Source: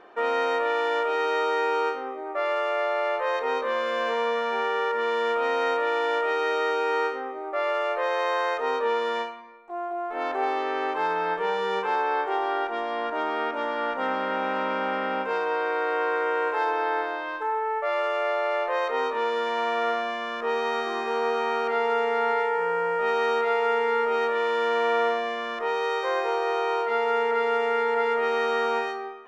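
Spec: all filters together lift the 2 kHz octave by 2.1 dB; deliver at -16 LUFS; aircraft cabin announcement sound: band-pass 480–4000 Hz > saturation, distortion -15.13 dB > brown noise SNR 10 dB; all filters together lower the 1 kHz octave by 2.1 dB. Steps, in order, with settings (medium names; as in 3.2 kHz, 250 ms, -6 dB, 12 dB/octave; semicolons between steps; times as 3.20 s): band-pass 480–4000 Hz; peaking EQ 1 kHz -3.5 dB; peaking EQ 2 kHz +4 dB; saturation -21.5 dBFS; brown noise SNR 10 dB; trim +13 dB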